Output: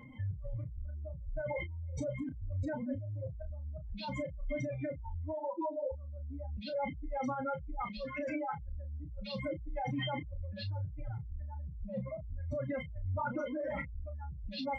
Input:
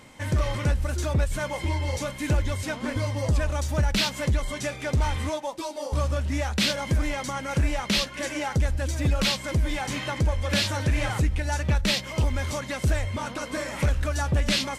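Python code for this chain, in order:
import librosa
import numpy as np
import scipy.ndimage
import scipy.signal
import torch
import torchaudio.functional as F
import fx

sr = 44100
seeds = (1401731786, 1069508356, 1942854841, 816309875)

y = fx.spec_expand(x, sr, power=3.5)
y = fx.lowpass(y, sr, hz=1200.0, slope=24, at=(11.54, 12.18), fade=0.02)
y = fx.over_compress(y, sr, threshold_db=-32.0, ratio=-1.0)
y = fx.doubler(y, sr, ms=32.0, db=-9.0)
y = y * 10.0 ** (-7.5 / 20.0)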